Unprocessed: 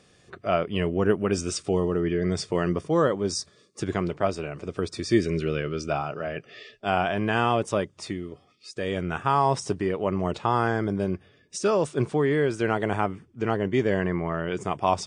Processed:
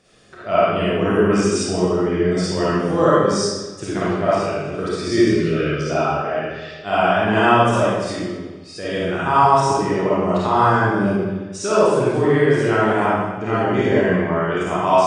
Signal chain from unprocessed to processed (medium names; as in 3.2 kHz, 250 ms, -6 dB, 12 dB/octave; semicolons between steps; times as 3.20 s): peaking EQ 1.5 kHz +2.5 dB 0.28 oct; algorithmic reverb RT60 1.3 s, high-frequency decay 0.85×, pre-delay 10 ms, DRR -9.5 dB; dynamic bell 1 kHz, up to +5 dB, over -32 dBFS, Q 5.3; trim -2.5 dB